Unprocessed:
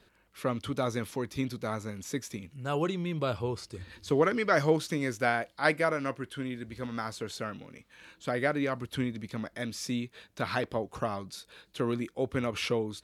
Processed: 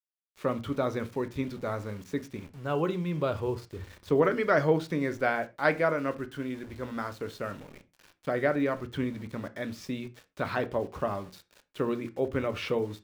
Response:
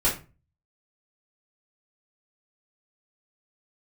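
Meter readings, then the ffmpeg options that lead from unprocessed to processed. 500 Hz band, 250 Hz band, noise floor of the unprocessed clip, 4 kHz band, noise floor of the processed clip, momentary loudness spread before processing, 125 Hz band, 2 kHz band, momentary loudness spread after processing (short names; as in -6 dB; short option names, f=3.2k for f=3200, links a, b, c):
+2.5 dB, +1.0 dB, -66 dBFS, -5.0 dB, -74 dBFS, 13 LU, +0.5 dB, -0.5 dB, 13 LU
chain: -filter_complex "[0:a]aemphasis=mode=reproduction:type=75fm,aeval=exprs='val(0)*gte(abs(val(0)),0.00398)':c=same,asplit=2[a][b];[1:a]atrim=start_sample=2205,atrim=end_sample=6174,lowpass=6.6k[c];[b][c]afir=irnorm=-1:irlink=0,volume=-21dB[d];[a][d]amix=inputs=2:normalize=0"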